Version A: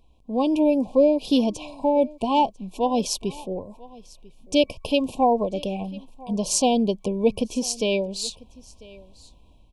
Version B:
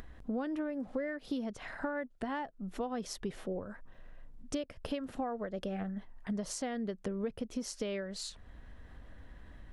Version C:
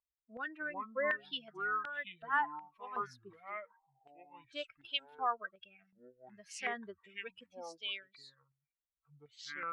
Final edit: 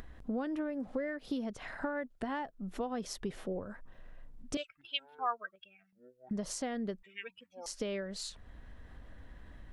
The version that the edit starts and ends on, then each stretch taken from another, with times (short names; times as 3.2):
B
4.57–6.31 from C
7.03–7.66 from C
not used: A